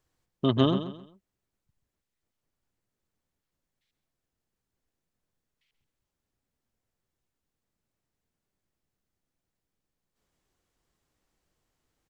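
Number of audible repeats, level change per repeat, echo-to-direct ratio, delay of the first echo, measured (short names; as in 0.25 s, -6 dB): 3, -10.0 dB, -10.5 dB, 0.132 s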